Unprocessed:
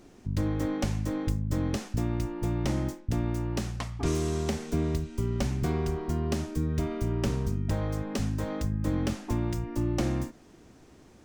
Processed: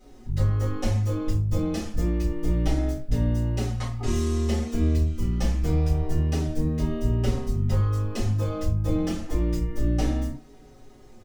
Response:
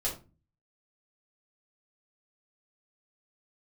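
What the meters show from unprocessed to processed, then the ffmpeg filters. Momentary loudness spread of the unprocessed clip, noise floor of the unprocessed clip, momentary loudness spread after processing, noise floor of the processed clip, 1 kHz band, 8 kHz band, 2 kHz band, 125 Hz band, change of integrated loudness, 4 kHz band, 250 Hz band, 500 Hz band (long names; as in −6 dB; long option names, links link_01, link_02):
3 LU, −55 dBFS, 4 LU, −49 dBFS, +0.5 dB, +1.0 dB, 0.0 dB, +5.5 dB, +4.5 dB, +1.5 dB, +2.0 dB, +1.5 dB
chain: -filter_complex "[0:a]acrusher=bits=11:mix=0:aa=0.000001[link_01];[1:a]atrim=start_sample=2205,afade=type=out:start_time=0.18:duration=0.01,atrim=end_sample=8379[link_02];[link_01][link_02]afir=irnorm=-1:irlink=0,asplit=2[link_03][link_04];[link_04]adelay=4.9,afreqshift=-0.28[link_05];[link_03][link_05]amix=inputs=2:normalize=1"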